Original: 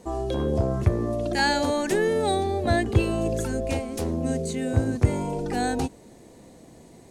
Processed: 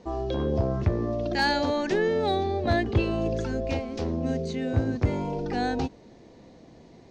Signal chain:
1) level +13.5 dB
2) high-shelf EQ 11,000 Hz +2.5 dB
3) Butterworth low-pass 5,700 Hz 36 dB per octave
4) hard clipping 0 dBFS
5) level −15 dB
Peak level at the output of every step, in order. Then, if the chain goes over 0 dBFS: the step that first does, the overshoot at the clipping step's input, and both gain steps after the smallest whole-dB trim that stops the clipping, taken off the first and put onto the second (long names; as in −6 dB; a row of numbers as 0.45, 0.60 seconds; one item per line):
+8.0, +8.0, +8.0, 0.0, −15.0 dBFS
step 1, 8.0 dB
step 1 +5.5 dB, step 5 −7 dB